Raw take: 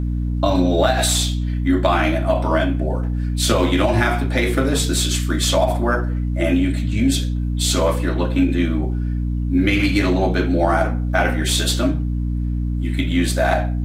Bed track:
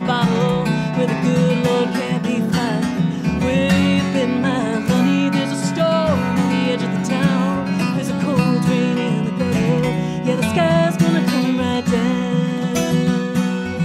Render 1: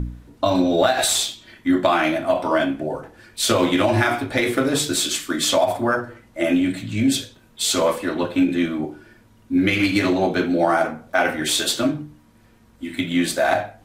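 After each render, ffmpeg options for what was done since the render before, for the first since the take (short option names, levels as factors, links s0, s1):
-af "bandreject=f=60:t=h:w=4,bandreject=f=120:t=h:w=4,bandreject=f=180:t=h:w=4,bandreject=f=240:t=h:w=4,bandreject=f=300:t=h:w=4"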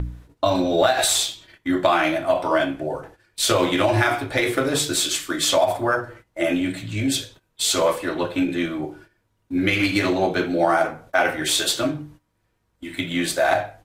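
-af "agate=range=0.178:threshold=0.00708:ratio=16:detection=peak,equalizer=f=230:t=o:w=0.35:g=-12"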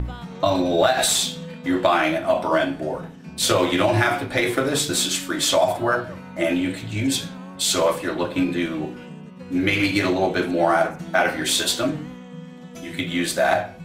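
-filter_complex "[1:a]volume=0.106[s0];[0:a][s0]amix=inputs=2:normalize=0"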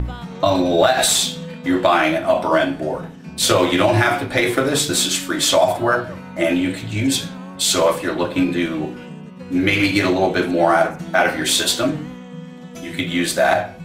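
-af "volume=1.5,alimiter=limit=0.708:level=0:latency=1"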